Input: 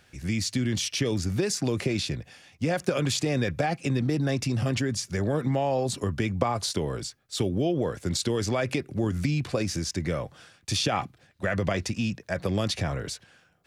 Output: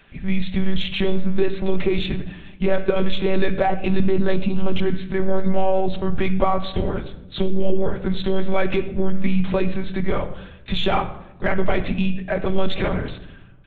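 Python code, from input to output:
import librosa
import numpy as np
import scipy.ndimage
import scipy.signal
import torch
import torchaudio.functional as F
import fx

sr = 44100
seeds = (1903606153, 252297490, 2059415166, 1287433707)

p1 = fx.lpc_monotone(x, sr, seeds[0], pitch_hz=190.0, order=8)
p2 = fx.room_shoebox(p1, sr, seeds[1], volume_m3=3000.0, walls='furnished', distance_m=1.2)
p3 = 10.0 ** (-22.5 / 20.0) * np.tanh(p2 / 10.0 ** (-22.5 / 20.0))
p4 = p2 + (p3 * 10.0 ** (-10.0 / 20.0))
p5 = fx.peak_eq(p4, sr, hz=1800.0, db=-10.5, octaves=0.45, at=(4.35, 4.86))
y = p5 * 10.0 ** (4.0 / 20.0)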